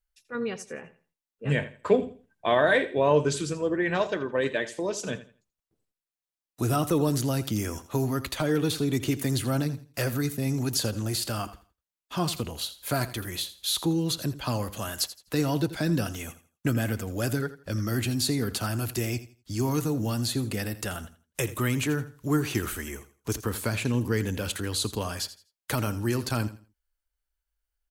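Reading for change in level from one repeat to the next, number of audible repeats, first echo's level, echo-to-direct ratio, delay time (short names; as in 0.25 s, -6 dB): -12.0 dB, 2, -15.0 dB, -14.5 dB, 83 ms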